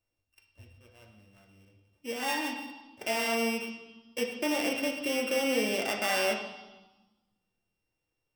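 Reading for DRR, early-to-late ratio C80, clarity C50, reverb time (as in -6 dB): 0.5 dB, 8.5 dB, 6.5 dB, 1.1 s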